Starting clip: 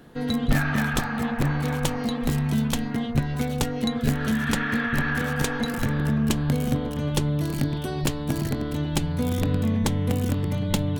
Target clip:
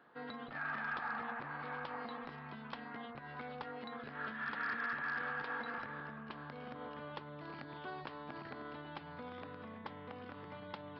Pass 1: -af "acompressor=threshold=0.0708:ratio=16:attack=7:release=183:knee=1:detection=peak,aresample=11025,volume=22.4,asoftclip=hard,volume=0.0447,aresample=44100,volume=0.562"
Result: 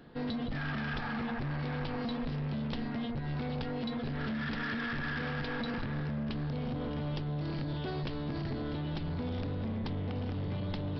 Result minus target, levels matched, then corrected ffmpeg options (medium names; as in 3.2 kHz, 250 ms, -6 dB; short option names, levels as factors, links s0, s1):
1 kHz band -7.5 dB
-af "acompressor=threshold=0.0708:ratio=16:attack=7:release=183:knee=1:detection=peak,bandpass=f=1200:t=q:w=1.5:csg=0,aresample=11025,volume=22.4,asoftclip=hard,volume=0.0447,aresample=44100,volume=0.562"